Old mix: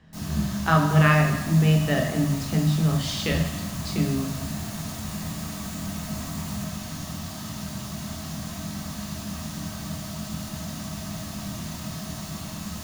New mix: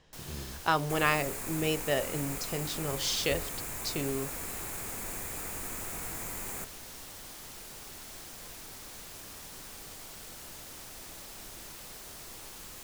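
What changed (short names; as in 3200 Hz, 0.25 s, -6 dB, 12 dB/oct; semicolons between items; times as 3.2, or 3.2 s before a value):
speech: add fifteen-band EQ 250 Hz -5 dB, 1600 Hz -7 dB, 6300 Hz +6 dB; second sound +6.0 dB; reverb: off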